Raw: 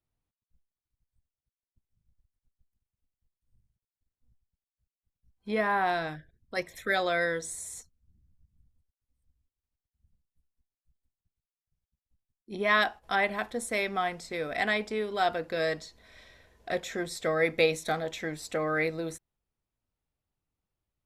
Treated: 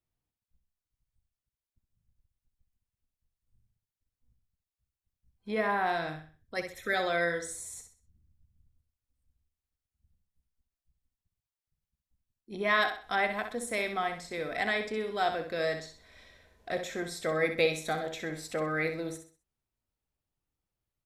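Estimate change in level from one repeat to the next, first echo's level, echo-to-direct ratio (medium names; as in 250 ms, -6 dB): -9.5 dB, -8.0 dB, -7.5 dB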